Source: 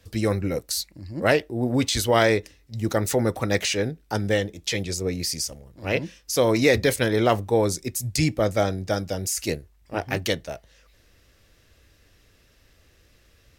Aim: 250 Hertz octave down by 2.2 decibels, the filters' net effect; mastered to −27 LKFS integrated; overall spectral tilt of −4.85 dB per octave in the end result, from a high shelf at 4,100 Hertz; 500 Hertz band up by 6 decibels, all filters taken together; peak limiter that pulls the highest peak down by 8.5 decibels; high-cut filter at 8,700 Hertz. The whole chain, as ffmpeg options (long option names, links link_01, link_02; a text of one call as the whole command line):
ffmpeg -i in.wav -af "lowpass=8700,equalizer=frequency=250:width_type=o:gain=-6.5,equalizer=frequency=500:width_type=o:gain=8.5,highshelf=frequency=4100:gain=-3.5,volume=-3dB,alimiter=limit=-14dB:level=0:latency=1" out.wav